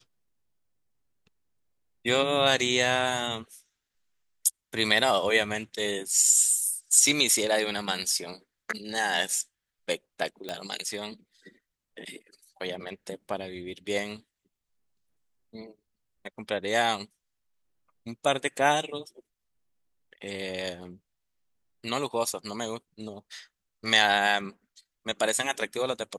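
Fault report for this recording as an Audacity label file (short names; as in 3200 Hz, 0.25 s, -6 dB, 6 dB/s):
10.490000	10.490000	pop -18 dBFS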